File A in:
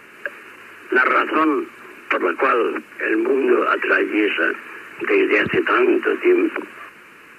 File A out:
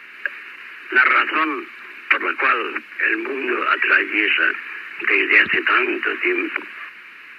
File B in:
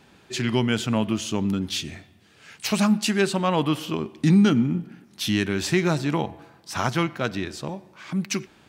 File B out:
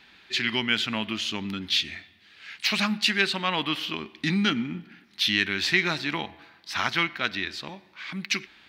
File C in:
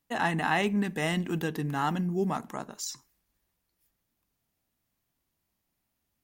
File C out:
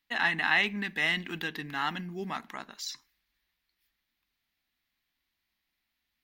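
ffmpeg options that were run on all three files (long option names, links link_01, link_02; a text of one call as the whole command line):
ffmpeg -i in.wav -af "equalizer=frequency=125:width_type=o:width=1:gain=-10,equalizer=frequency=500:width_type=o:width=1:gain=-6,equalizer=frequency=2000:width_type=o:width=1:gain=10,equalizer=frequency=4000:width_type=o:width=1:gain=11,equalizer=frequency=8000:width_type=o:width=1:gain=-8,volume=-4.5dB" out.wav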